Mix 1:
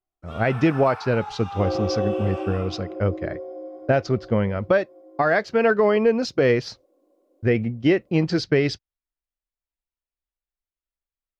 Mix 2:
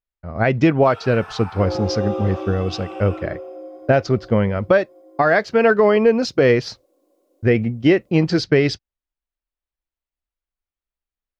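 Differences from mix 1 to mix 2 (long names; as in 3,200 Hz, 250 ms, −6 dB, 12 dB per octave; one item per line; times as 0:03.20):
speech +4.0 dB
first sound: entry +0.55 s
second sound: add high-shelf EQ 2,200 Hz +10 dB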